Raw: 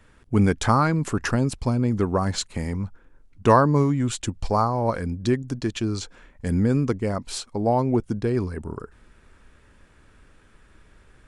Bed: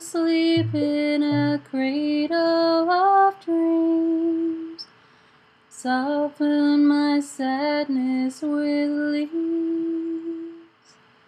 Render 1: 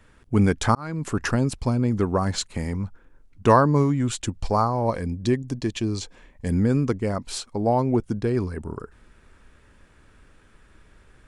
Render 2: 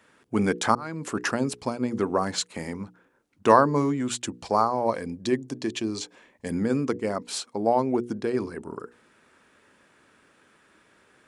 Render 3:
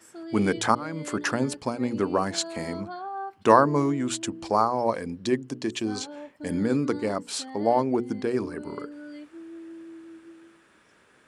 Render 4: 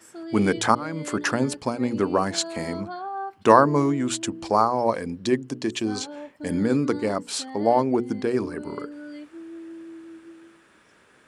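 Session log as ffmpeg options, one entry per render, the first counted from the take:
-filter_complex "[0:a]asettb=1/sr,asplit=3[a][b][c];[a]atrim=end=4.854[d];[b]atrim=start=4.85:end=6.53,asetpts=PTS-STARTPTS,afade=t=in:d=0.004:c=qsin,afade=t=out:st=1.676:d=0.004:c=qsin,equalizer=f=1.4k:w=7.2:g=-12.5[e];[c]atrim=start=6.526[f];[d][e]acrossfade=d=0.004:c1=hsin:c2=qsin[g];[g][f]acrossfade=d=0.004:c1=qsin:c2=hsin,asplit=2[h][i];[h]atrim=end=0.75,asetpts=PTS-STARTPTS,afade=t=out:st=0.746:d=0.004:c=hsin[j];[i]atrim=start=0.75,asetpts=PTS-STARTPTS,afade=t=in:d=0.42[k];[j][k]concat=n=2:v=0:a=1"
-af "highpass=230,bandreject=f=60:t=h:w=6,bandreject=f=120:t=h:w=6,bandreject=f=180:t=h:w=6,bandreject=f=240:t=h:w=6,bandreject=f=300:t=h:w=6,bandreject=f=360:t=h:w=6,bandreject=f=420:t=h:w=6,bandreject=f=480:t=h:w=6"
-filter_complex "[1:a]volume=-18dB[a];[0:a][a]amix=inputs=2:normalize=0"
-af "volume=2.5dB,alimiter=limit=-1dB:level=0:latency=1"

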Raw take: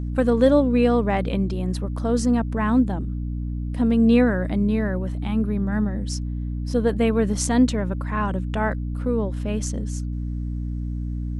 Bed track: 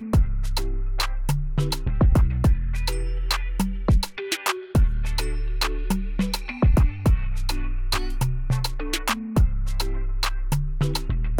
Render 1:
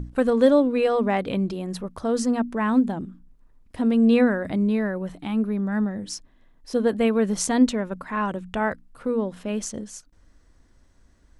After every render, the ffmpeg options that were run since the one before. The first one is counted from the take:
-af "bandreject=f=60:t=h:w=6,bandreject=f=120:t=h:w=6,bandreject=f=180:t=h:w=6,bandreject=f=240:t=h:w=6,bandreject=f=300:t=h:w=6"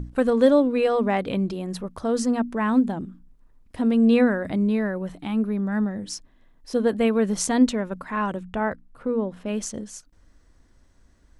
-filter_complex "[0:a]asettb=1/sr,asplit=3[a][b][c];[a]atrim=end=8.434[d];[b]atrim=start=8.43:end=9.46,asetpts=PTS-STARTPTS,afade=t=in:d=0.004:c=qsin,afade=t=out:st=1.026:d=0.004:c=qsin,highshelf=f=2.8k:g=-10[e];[c]atrim=start=9.456[f];[d][e]acrossfade=d=0.004:c1=hsin:c2=qsin[g];[g][f]acrossfade=d=0.004:c1=qsin:c2=hsin"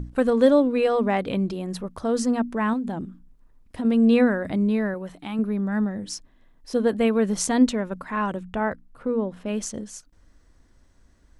-filter_complex "[0:a]asettb=1/sr,asplit=3[a][b][c];[a]atrim=end=2.734[d];[b]atrim=start=2.73:end=3.85,asetpts=PTS-STARTPTS,afade=t=in:d=0.004:c=qsin,afade=t=out:st=1.116:d=0.004:c=qsin,acompressor=threshold=-23dB:ratio=12:attack=3.2:release=140:knee=1:detection=peak[e];[c]atrim=start=3.846[f];[d][e]acrossfade=d=0.004:c1=hsin:c2=qsin[g];[g][f]acrossfade=d=0.004:c1=qsin:c2=hsin,asettb=1/sr,asplit=3[h][i][j];[h]atrim=end=4.944[k];[i]atrim=start=4.94:end=5.39,asetpts=PTS-STARTPTS,afade=t=in:d=0.004:c=qsin,afade=t=out:st=0.446:d=0.004:c=qsin,lowshelf=f=320:g=-7[l];[j]atrim=start=5.386[m];[k][l]acrossfade=d=0.004:c1=hsin:c2=qsin[n];[n][m]acrossfade=d=0.004:c1=qsin:c2=hsin"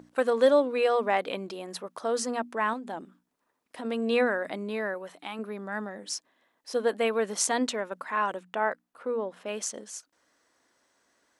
-af "highpass=500"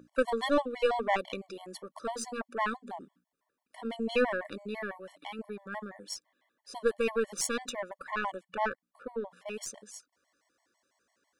-af "aeval=exprs='0.398*(cos(1*acos(clip(val(0)/0.398,-1,1)))-cos(1*PI/2))+0.0178*(cos(6*acos(clip(val(0)/0.398,-1,1)))-cos(6*PI/2))+0.0178*(cos(7*acos(clip(val(0)/0.398,-1,1)))-cos(7*PI/2))':c=same,afftfilt=real='re*gt(sin(2*PI*6*pts/sr)*(1-2*mod(floor(b*sr/1024/580),2)),0)':imag='im*gt(sin(2*PI*6*pts/sr)*(1-2*mod(floor(b*sr/1024/580),2)),0)':win_size=1024:overlap=0.75"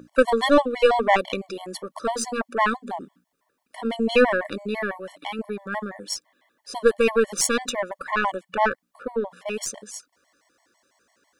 -af "volume=10dB"

